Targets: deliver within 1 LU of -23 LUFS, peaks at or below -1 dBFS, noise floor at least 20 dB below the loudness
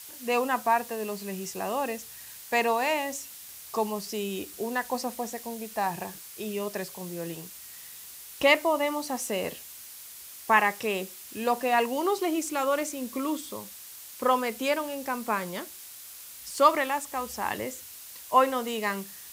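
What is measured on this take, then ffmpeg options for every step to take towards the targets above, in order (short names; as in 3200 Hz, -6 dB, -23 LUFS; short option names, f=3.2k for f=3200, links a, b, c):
noise floor -45 dBFS; noise floor target -49 dBFS; loudness -28.5 LUFS; peak -7.0 dBFS; loudness target -23.0 LUFS
-> -af "afftdn=nr=6:nf=-45"
-af "volume=5.5dB"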